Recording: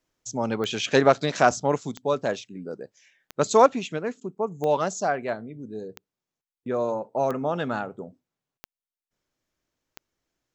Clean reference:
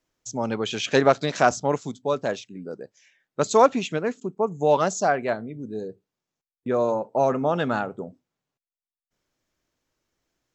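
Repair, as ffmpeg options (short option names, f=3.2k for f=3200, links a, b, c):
-af "adeclick=t=4,asetnsamples=n=441:p=0,asendcmd='3.66 volume volume 3.5dB',volume=0dB"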